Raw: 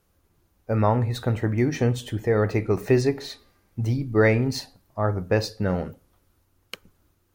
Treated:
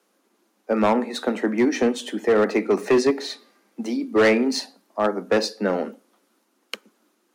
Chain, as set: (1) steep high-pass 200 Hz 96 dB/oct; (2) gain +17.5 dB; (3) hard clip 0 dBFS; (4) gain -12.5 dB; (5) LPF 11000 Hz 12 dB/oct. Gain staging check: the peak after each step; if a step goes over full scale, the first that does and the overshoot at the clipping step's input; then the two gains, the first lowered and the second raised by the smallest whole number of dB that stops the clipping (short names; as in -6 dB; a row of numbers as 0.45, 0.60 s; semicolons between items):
-8.5, +9.0, 0.0, -12.5, -12.0 dBFS; step 2, 9.0 dB; step 2 +8.5 dB, step 4 -3.5 dB